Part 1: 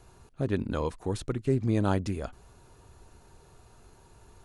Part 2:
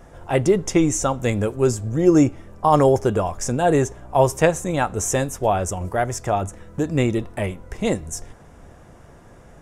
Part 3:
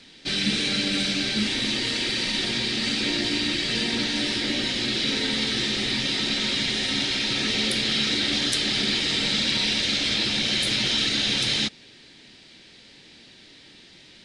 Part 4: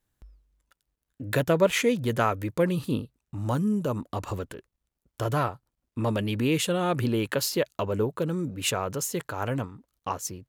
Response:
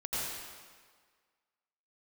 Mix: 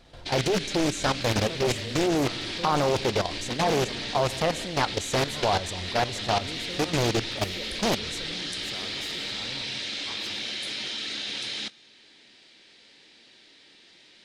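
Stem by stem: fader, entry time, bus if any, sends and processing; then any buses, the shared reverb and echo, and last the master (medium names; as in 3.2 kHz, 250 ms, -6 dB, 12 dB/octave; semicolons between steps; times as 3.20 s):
-12.0 dB, 0.20 s, no send, none
-2.0 dB, 0.00 s, send -23.5 dB, none
-2.0 dB, 0.00 s, send -22 dB, tone controls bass -12 dB, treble -1 dB
-10.5 dB, 0.00 s, send -9.5 dB, none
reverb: on, RT60 1.7 s, pre-delay 79 ms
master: level held to a coarse grid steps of 11 dB; loudspeaker Doppler distortion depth 0.92 ms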